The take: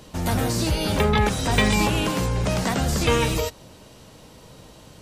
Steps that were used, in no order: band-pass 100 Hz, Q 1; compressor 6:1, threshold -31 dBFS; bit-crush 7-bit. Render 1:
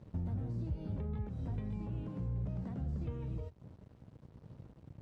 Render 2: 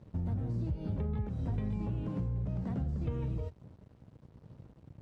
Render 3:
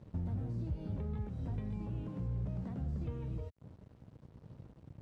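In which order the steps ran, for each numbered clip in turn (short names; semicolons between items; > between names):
bit-crush > compressor > band-pass; bit-crush > band-pass > compressor; compressor > bit-crush > band-pass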